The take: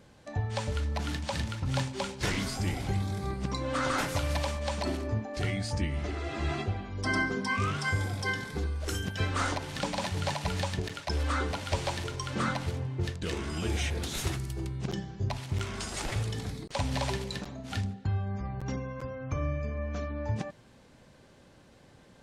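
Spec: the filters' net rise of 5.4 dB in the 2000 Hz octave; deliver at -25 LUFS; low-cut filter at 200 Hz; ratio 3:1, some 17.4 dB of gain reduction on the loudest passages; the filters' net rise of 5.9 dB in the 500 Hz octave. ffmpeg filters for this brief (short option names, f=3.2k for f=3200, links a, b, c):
-af "highpass=200,equalizer=f=500:t=o:g=7,equalizer=f=2k:t=o:g=6.5,acompressor=threshold=-47dB:ratio=3,volume=20.5dB"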